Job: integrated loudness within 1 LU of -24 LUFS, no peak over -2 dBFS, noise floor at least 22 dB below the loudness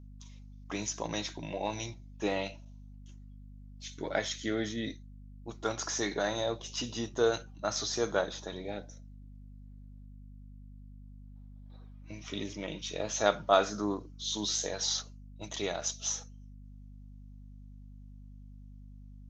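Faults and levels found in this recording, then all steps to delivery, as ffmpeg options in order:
hum 50 Hz; harmonics up to 250 Hz; hum level -47 dBFS; loudness -33.5 LUFS; peak -9.5 dBFS; loudness target -24.0 LUFS
-> -af "bandreject=f=50:t=h:w=6,bandreject=f=100:t=h:w=6,bandreject=f=150:t=h:w=6,bandreject=f=200:t=h:w=6,bandreject=f=250:t=h:w=6"
-af "volume=9.5dB,alimiter=limit=-2dB:level=0:latency=1"

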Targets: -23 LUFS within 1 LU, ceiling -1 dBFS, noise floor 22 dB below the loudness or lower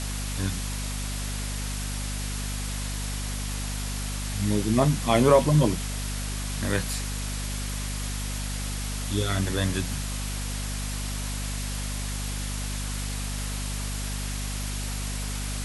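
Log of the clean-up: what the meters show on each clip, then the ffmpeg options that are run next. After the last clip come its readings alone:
hum 50 Hz; harmonics up to 250 Hz; hum level -29 dBFS; noise floor -31 dBFS; noise floor target -51 dBFS; loudness -28.5 LUFS; peak -5.5 dBFS; loudness target -23.0 LUFS
-> -af "bandreject=f=50:t=h:w=4,bandreject=f=100:t=h:w=4,bandreject=f=150:t=h:w=4,bandreject=f=200:t=h:w=4,bandreject=f=250:t=h:w=4"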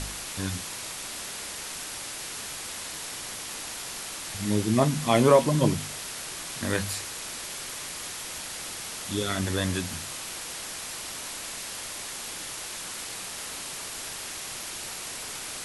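hum none; noise floor -37 dBFS; noise floor target -52 dBFS
-> -af "afftdn=nr=15:nf=-37"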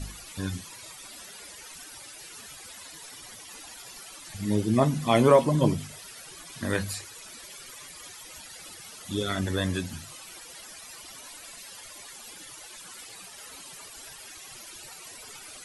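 noise floor -46 dBFS; noise floor target -49 dBFS
-> -af "afftdn=nr=6:nf=-46"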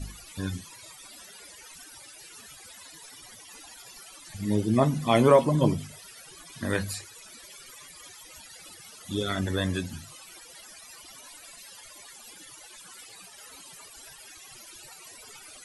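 noise floor -49 dBFS; loudness -26.5 LUFS; peak -6.0 dBFS; loudness target -23.0 LUFS
-> -af "volume=3.5dB"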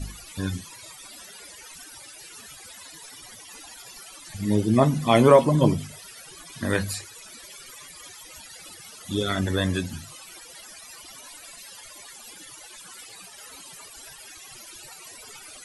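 loudness -23.0 LUFS; peak -2.5 dBFS; noise floor -45 dBFS

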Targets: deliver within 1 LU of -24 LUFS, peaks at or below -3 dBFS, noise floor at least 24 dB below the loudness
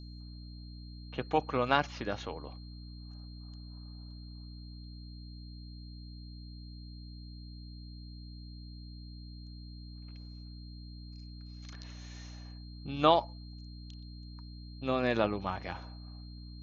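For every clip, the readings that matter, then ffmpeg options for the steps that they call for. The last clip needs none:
hum 60 Hz; harmonics up to 300 Hz; hum level -44 dBFS; steady tone 4200 Hz; tone level -56 dBFS; loudness -33.0 LUFS; peak -9.5 dBFS; loudness target -24.0 LUFS
-> -af "bandreject=f=60:t=h:w=6,bandreject=f=120:t=h:w=6,bandreject=f=180:t=h:w=6,bandreject=f=240:t=h:w=6,bandreject=f=300:t=h:w=6"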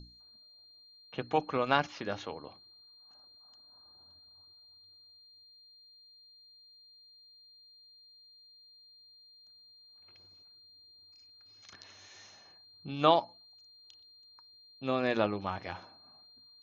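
hum none; steady tone 4200 Hz; tone level -56 dBFS
-> -af "bandreject=f=4.2k:w=30"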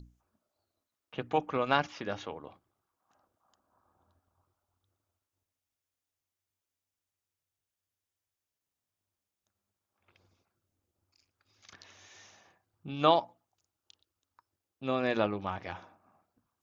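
steady tone none; loudness -31.5 LUFS; peak -9.5 dBFS; loudness target -24.0 LUFS
-> -af "volume=7.5dB,alimiter=limit=-3dB:level=0:latency=1"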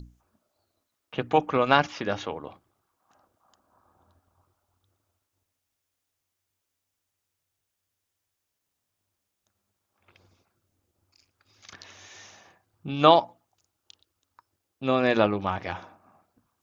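loudness -24.5 LUFS; peak -3.0 dBFS; noise floor -82 dBFS

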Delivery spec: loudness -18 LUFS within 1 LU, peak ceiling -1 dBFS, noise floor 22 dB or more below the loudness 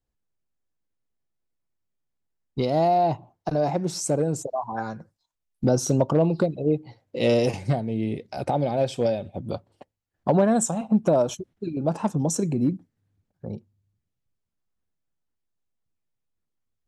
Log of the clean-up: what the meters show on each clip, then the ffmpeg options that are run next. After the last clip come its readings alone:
loudness -24.5 LUFS; peak -8.5 dBFS; loudness target -18.0 LUFS
-> -af "volume=6.5dB"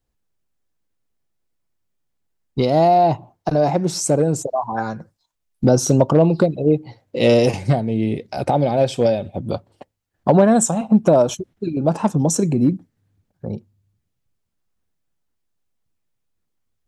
loudness -18.0 LUFS; peak -2.0 dBFS; noise floor -74 dBFS

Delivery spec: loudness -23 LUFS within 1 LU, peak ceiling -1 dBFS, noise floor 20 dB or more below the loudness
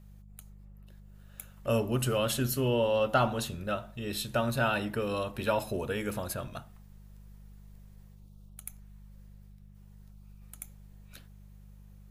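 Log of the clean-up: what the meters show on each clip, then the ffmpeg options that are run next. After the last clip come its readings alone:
hum 50 Hz; harmonics up to 200 Hz; hum level -50 dBFS; loudness -30.5 LUFS; peak -13.5 dBFS; loudness target -23.0 LUFS
-> -af "bandreject=f=50:t=h:w=4,bandreject=f=100:t=h:w=4,bandreject=f=150:t=h:w=4,bandreject=f=200:t=h:w=4"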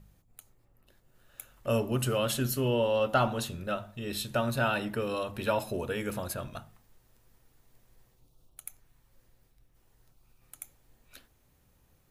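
hum none; loudness -30.5 LUFS; peak -13.5 dBFS; loudness target -23.0 LUFS
-> -af "volume=7.5dB"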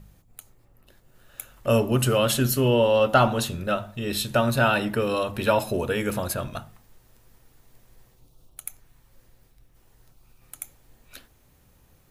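loudness -23.0 LUFS; peak -6.0 dBFS; noise floor -60 dBFS

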